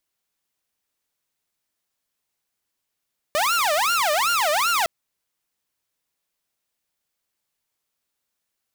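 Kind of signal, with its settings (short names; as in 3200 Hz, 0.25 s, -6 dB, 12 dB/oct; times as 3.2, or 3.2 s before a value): siren wail 591–1410 Hz 2.6/s saw -16 dBFS 1.51 s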